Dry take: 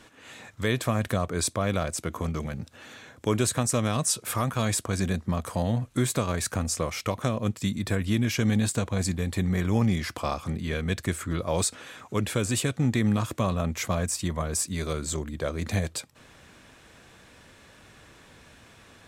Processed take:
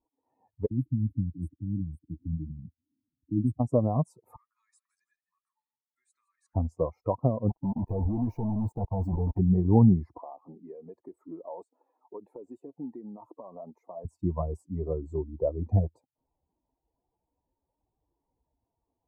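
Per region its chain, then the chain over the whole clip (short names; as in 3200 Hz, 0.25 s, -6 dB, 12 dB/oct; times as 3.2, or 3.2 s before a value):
0.66–3.6 Chebyshev band-stop 310–8300 Hz, order 5 + dispersion lows, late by 49 ms, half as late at 1000 Hz
4.36–6.55 elliptic band-pass 1600–9800 Hz + warbling echo 0.165 s, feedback 53%, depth 107 cents, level -9.5 dB
7.49–9.39 level quantiser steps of 17 dB + companded quantiser 2-bit
10.18–14.05 HPF 280 Hz + compressor 8:1, threshold -31 dBFS
whole clip: per-bin expansion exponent 2; elliptic low-pass 940 Hz, stop band 40 dB; gain +7.5 dB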